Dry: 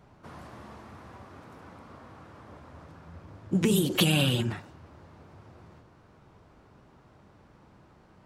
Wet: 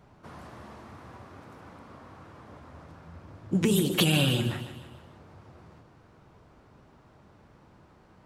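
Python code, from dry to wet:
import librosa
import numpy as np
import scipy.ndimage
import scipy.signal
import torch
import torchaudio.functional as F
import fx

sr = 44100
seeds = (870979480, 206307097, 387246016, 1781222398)

y = fx.echo_feedback(x, sr, ms=152, feedback_pct=49, wet_db=-12.0)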